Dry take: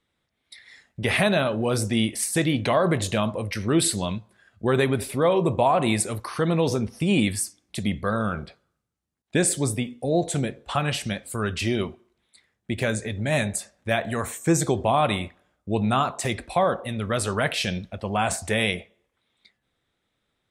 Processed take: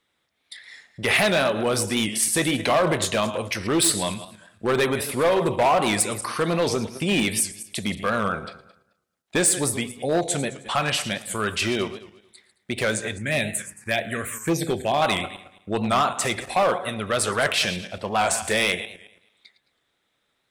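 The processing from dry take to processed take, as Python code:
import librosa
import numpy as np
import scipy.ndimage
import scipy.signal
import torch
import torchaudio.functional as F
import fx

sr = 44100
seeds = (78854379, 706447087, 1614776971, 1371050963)

y = fx.reverse_delay_fb(x, sr, ms=109, feedback_pct=42, wet_db=-13.5)
y = fx.low_shelf(y, sr, hz=150.0, db=-7.0)
y = y + 10.0 ** (-20.5 / 20.0) * np.pad(y, (int(114 * sr / 1000.0), 0))[:len(y)]
y = fx.env_phaser(y, sr, low_hz=540.0, high_hz=1500.0, full_db=-17.0, at=(13.18, 15.02))
y = np.clip(y, -10.0 ** (-18.0 / 20.0), 10.0 ** (-18.0 / 20.0))
y = fx.low_shelf(y, sr, hz=410.0, db=-6.0)
y = fx.record_warp(y, sr, rpm=78.0, depth_cents=100.0)
y = y * librosa.db_to_amplitude(5.0)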